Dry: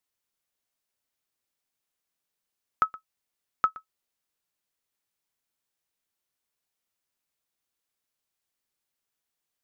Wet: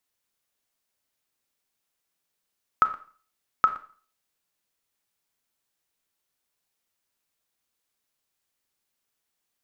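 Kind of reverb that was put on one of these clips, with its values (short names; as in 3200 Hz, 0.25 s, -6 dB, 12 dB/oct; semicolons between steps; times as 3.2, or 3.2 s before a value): Schroeder reverb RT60 0.43 s, combs from 28 ms, DRR 9.5 dB; gain +3.5 dB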